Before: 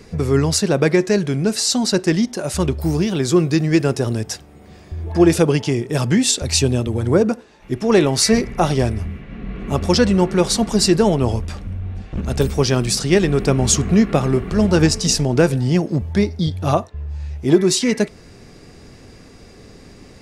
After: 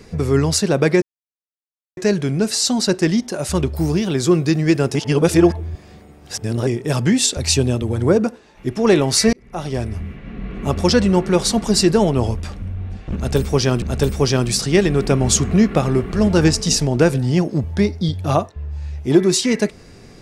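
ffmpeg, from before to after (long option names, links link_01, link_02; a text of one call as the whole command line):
ffmpeg -i in.wav -filter_complex "[0:a]asplit=6[link_01][link_02][link_03][link_04][link_05][link_06];[link_01]atrim=end=1.02,asetpts=PTS-STARTPTS,afade=type=out:start_time=1.016:duration=0.004:curve=hsin,apad=pad_dur=0.95[link_07];[link_02]atrim=start=1.02:end=4.002,asetpts=PTS-STARTPTS,afade=type=in:duration=0.004:curve=hsin[link_08];[link_03]atrim=start=3.998:end=5.722,asetpts=PTS-STARTPTS,areverse[link_09];[link_04]atrim=start=5.718:end=8.38,asetpts=PTS-STARTPTS,afade=type=out:start_time=2.658:duration=0.004:curve=hsin[link_10];[link_05]atrim=start=8.38:end=12.872,asetpts=PTS-STARTPTS,afade=type=in:duration=0.79[link_11];[link_06]atrim=start=12.198[link_12];[link_07][link_08]concat=n=2:v=0:a=1[link_13];[link_13][link_09]acrossfade=duration=0.004:curve1=hsin:curve2=hsin[link_14];[link_10][link_11]concat=n=2:v=0:a=1[link_15];[link_14][link_15]acrossfade=duration=0.004:curve1=hsin:curve2=hsin[link_16];[link_16][link_12]acrossfade=duration=0.004:curve1=hsin:curve2=hsin" out.wav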